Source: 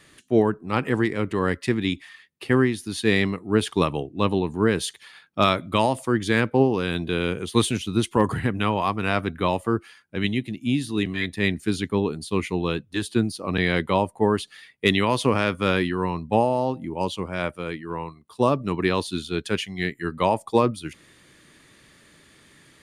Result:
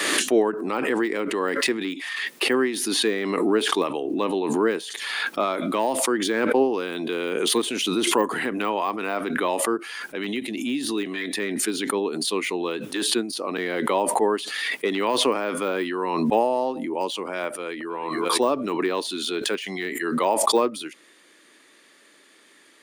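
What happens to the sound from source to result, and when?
17.48–17.92 s: echo throw 320 ms, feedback 30%, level -17 dB
whole clip: de-esser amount 90%; high-pass 280 Hz 24 dB/octave; swell ahead of each attack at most 27 dB/s

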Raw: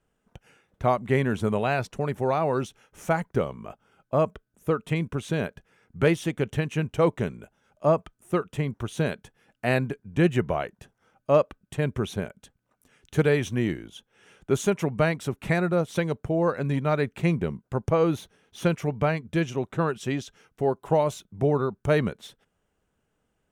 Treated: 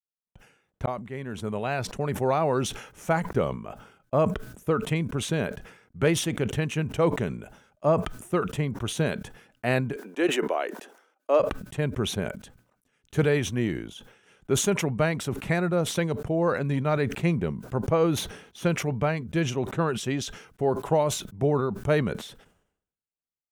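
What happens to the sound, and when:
0.86–2.30 s: fade in
9.96–11.40 s: steep high-pass 290 Hz
whole clip: level rider gain up to 10 dB; expander -44 dBFS; decay stretcher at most 83 dB/s; trim -9 dB

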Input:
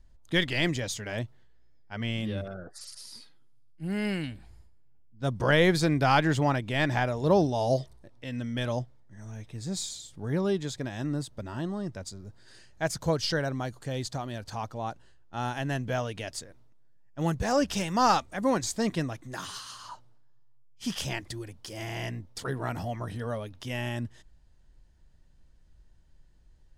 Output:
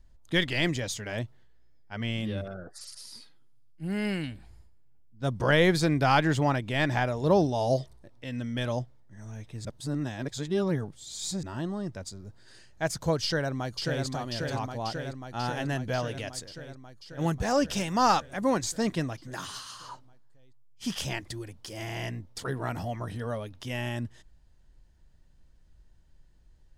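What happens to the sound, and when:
9.65–11.43 s: reverse
13.23–14.04 s: echo throw 540 ms, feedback 75%, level -4 dB

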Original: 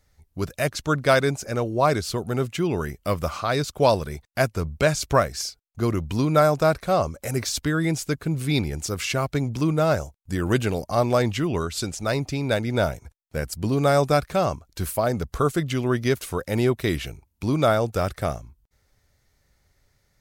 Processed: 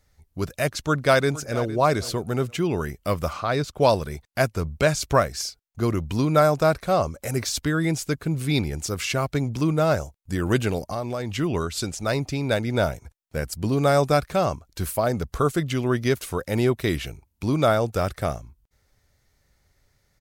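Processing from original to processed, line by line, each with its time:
0.80–1.70 s: echo throw 460 ms, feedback 25%, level -16.5 dB
3.33–3.81 s: treble shelf 4.4 kHz -8 dB
10.78–11.39 s: compression 5:1, threshold -25 dBFS

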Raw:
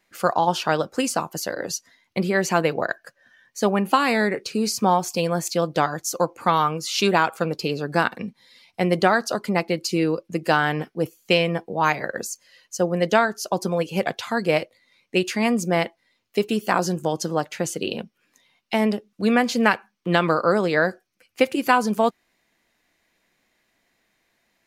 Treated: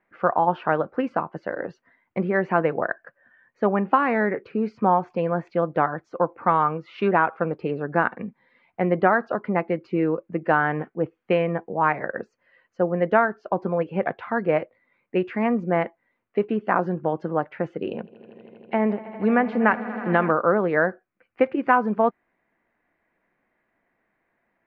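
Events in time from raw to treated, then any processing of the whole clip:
17.88–20.31 s: echo with a slow build-up 80 ms, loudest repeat 5, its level -18 dB
whole clip: low-pass 1.9 kHz 24 dB/octave; bass shelf 140 Hz -5 dB

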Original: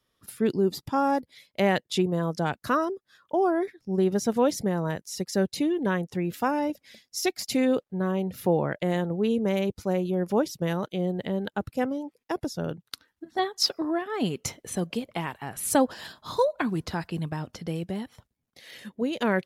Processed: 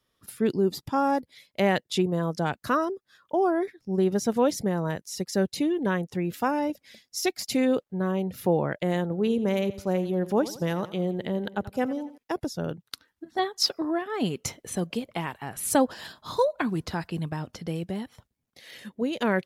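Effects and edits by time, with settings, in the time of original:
9.03–12.18 s: feedback delay 86 ms, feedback 46%, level -16 dB

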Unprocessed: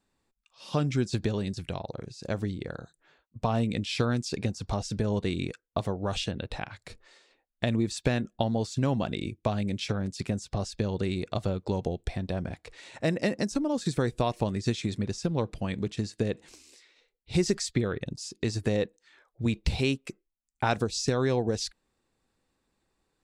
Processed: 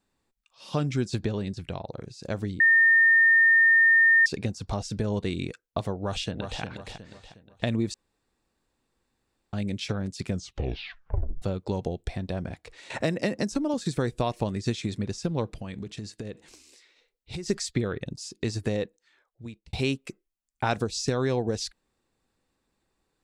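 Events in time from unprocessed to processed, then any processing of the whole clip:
1.22–1.93 s: treble shelf 6 kHz -9 dB
2.60–4.26 s: bleep 1.82 kHz -15 dBFS
5.94–6.61 s: echo throw 360 ms, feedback 40%, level -6.5 dB
7.94–9.53 s: room tone
10.25 s: tape stop 1.17 s
12.90–13.74 s: three bands compressed up and down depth 70%
15.56–17.50 s: compression, threshold -32 dBFS
18.59–19.73 s: fade out

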